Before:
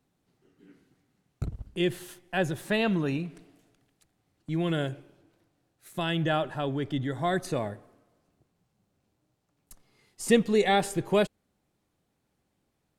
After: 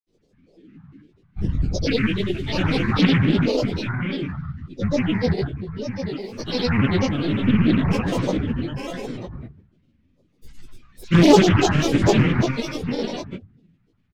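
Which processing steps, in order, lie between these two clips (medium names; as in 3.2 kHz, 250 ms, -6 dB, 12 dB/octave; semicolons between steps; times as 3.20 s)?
every event in the spectrogram widened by 240 ms; FFT filter 120 Hz 0 dB, 260 Hz +9 dB, 800 Hz -14 dB, 2.8 kHz +7 dB, 8.7 kHz -10 dB; multi-tap echo 144/795 ms -15.5/-7.5 dB; speed mistake 48 kHz file played as 44.1 kHz; reverberation RT60 0.45 s, pre-delay 5 ms, DRR -6.5 dB; granulator, grains 20 per s, pitch spread up and down by 12 st; loudspeaker Doppler distortion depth 0.35 ms; trim -10.5 dB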